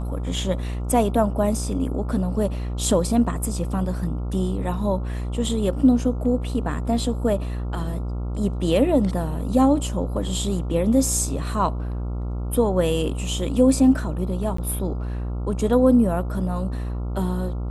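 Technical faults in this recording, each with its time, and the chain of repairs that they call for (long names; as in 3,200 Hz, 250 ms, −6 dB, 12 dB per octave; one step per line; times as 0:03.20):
mains buzz 60 Hz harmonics 23 −27 dBFS
0:14.57–0:14.58: drop-out 14 ms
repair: hum removal 60 Hz, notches 23
repair the gap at 0:14.57, 14 ms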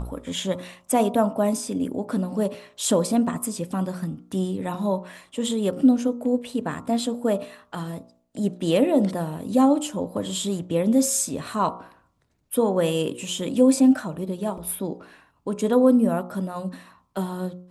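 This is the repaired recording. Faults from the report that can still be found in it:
none of them is left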